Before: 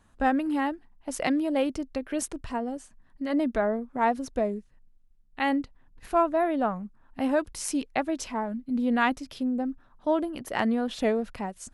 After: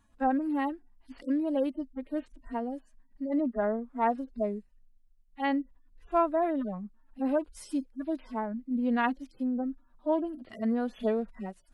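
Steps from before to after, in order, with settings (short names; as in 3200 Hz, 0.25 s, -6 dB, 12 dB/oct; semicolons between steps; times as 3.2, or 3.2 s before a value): median-filter separation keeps harmonic; gain -2.5 dB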